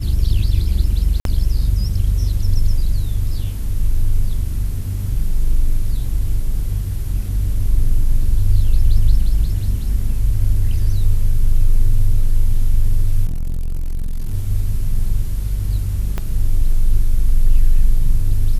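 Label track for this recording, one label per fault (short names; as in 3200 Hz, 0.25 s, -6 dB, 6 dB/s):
1.200000	1.250000	gap 52 ms
13.250000	14.350000	clipped -17.5 dBFS
16.180000	16.180000	pop -10 dBFS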